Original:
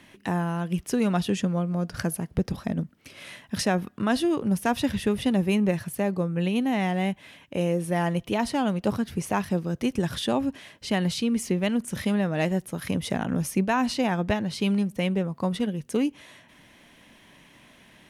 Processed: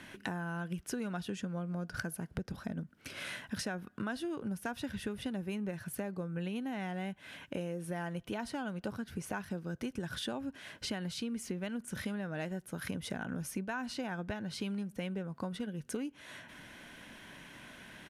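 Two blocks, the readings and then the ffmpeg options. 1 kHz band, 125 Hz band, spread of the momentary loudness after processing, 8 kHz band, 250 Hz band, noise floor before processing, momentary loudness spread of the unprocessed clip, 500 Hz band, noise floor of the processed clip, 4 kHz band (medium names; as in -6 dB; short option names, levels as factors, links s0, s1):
-14.0 dB, -12.5 dB, 7 LU, -9.5 dB, -13.0 dB, -55 dBFS, 6 LU, -13.5 dB, -59 dBFS, -10.0 dB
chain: -af "equalizer=f=1500:w=7.6:g=12,acompressor=threshold=0.0126:ratio=5,aresample=32000,aresample=44100,volume=1.12"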